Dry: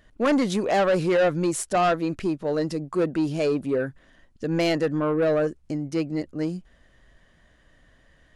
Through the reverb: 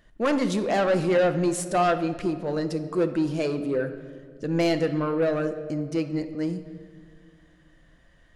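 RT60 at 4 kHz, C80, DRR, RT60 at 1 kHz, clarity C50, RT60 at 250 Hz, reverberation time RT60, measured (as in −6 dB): 1.3 s, 13.0 dB, 8.0 dB, 1.7 s, 11.0 dB, 2.5 s, 1.9 s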